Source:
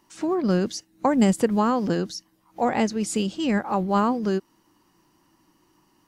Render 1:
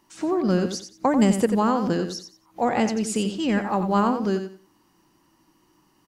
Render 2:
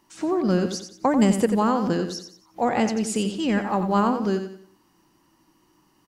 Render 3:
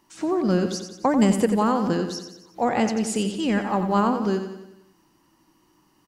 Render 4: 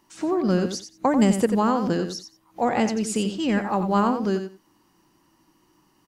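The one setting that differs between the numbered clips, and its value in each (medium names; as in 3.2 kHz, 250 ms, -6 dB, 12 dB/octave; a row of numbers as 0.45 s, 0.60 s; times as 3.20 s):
feedback delay, feedback: 23%, 36%, 53%, 16%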